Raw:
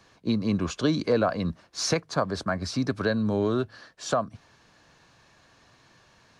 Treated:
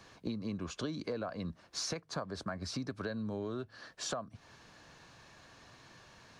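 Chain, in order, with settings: compressor 5:1, threshold -38 dBFS, peak gain reduction 17.5 dB; gain +1 dB

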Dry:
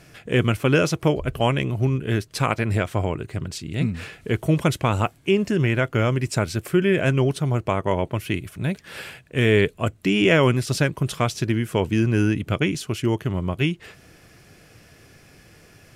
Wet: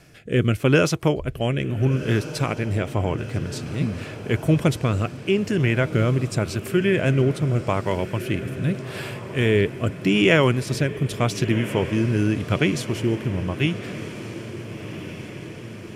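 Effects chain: rotary speaker horn 0.85 Hz; on a send: diffused feedback echo 1.42 s, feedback 64%, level -13 dB; on the sum: gain +1.5 dB

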